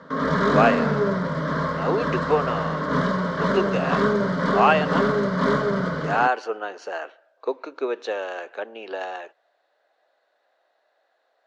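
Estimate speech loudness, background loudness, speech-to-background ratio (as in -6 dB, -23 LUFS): -26.0 LUFS, -23.0 LUFS, -3.0 dB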